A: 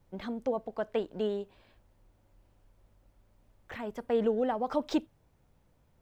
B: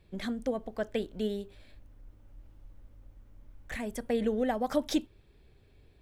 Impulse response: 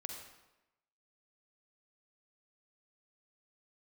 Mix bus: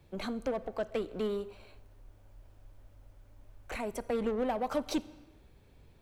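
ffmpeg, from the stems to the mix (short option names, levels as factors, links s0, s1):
-filter_complex "[0:a]asoftclip=type=tanh:threshold=0.0224,volume=1.12,asplit=2[s0][s1];[s1]volume=0.335[s2];[1:a]volume=-1,volume=0.75,asplit=2[s3][s4];[s4]volume=0.266[s5];[2:a]atrim=start_sample=2205[s6];[s2][s5]amix=inputs=2:normalize=0[s7];[s7][s6]afir=irnorm=-1:irlink=0[s8];[s0][s3][s8]amix=inputs=3:normalize=0,acrossover=split=190[s9][s10];[s10]acompressor=threshold=0.0141:ratio=1.5[s11];[s9][s11]amix=inputs=2:normalize=0"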